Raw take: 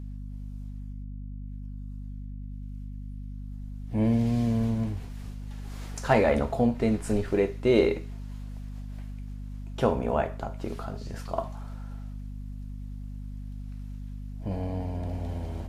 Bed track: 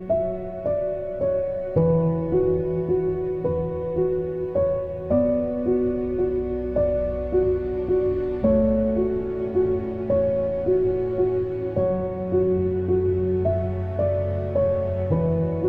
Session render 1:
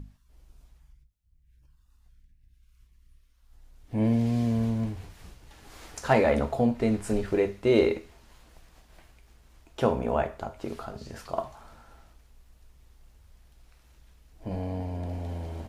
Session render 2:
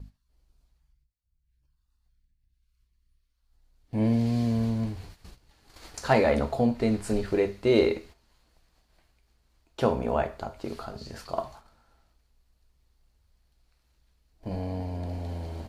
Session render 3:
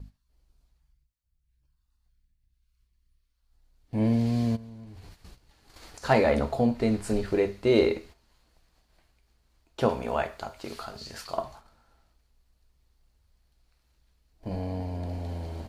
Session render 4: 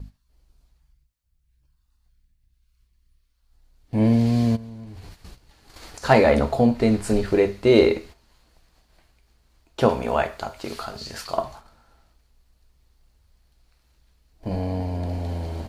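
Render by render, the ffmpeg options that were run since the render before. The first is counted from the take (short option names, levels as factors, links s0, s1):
-af "bandreject=f=50:t=h:w=6,bandreject=f=100:t=h:w=6,bandreject=f=150:t=h:w=6,bandreject=f=200:t=h:w=6,bandreject=f=250:t=h:w=6"
-af "agate=range=0.282:threshold=0.00501:ratio=16:detection=peak,equalizer=f=4400:w=5:g=8"
-filter_complex "[0:a]asplit=3[s0][s1][s2];[s0]afade=t=out:st=4.55:d=0.02[s3];[s1]acompressor=threshold=0.00794:ratio=8:attack=3.2:release=140:knee=1:detection=peak,afade=t=in:st=4.55:d=0.02,afade=t=out:st=6.02:d=0.02[s4];[s2]afade=t=in:st=6.02:d=0.02[s5];[s3][s4][s5]amix=inputs=3:normalize=0,asettb=1/sr,asplit=3[s6][s7][s8];[s6]atrim=end=9.894[s9];[s7]atrim=start=9.89:end=11.37,asetpts=PTS-STARTPTS,afade=t=in:d=0.004:c=qsin,afade=t=out:st=1.476:d=0.004:c=qsin,tiltshelf=f=940:g=-5.5[s10];[s8]atrim=start=11.366[s11];[s9][s10]acrossfade=d=0.004:c1=hsin:c2=qsin[s12];[s12][s11]acrossfade=d=0.004:c1=qsin:c2=hsin"
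-af "volume=2"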